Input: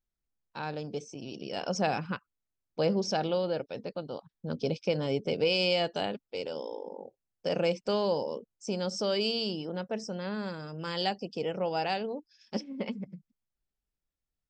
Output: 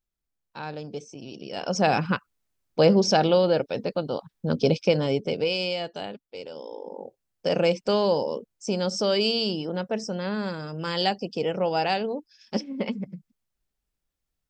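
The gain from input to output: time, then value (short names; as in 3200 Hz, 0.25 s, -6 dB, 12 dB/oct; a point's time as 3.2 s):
1.5 s +1 dB
2 s +9.5 dB
4.76 s +9.5 dB
5.8 s -2.5 dB
6.55 s -2.5 dB
7.05 s +6 dB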